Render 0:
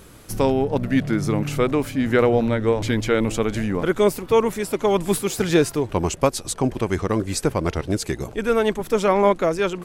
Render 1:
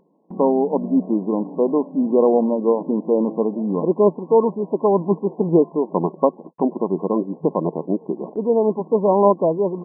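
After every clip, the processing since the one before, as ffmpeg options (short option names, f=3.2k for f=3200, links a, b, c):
-af "afftfilt=real='re*between(b*sr/4096,160,1100)':imag='im*between(b*sr/4096,160,1100)':win_size=4096:overlap=0.75,agate=range=-56dB:threshold=-38dB:ratio=16:detection=peak,acompressor=mode=upward:threshold=-33dB:ratio=2.5,volume=2.5dB"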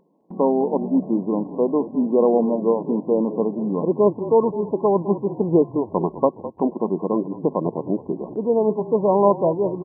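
-filter_complex "[0:a]asplit=4[a][b][c][d];[b]adelay=208,afreqshift=-36,volume=-14dB[e];[c]adelay=416,afreqshift=-72,volume=-23.1dB[f];[d]adelay=624,afreqshift=-108,volume=-32.2dB[g];[a][e][f][g]amix=inputs=4:normalize=0,volume=-1.5dB"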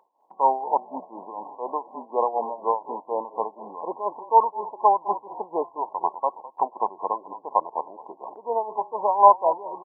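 -af "tremolo=f=4.1:d=0.77,highpass=f=870:t=q:w=3.6"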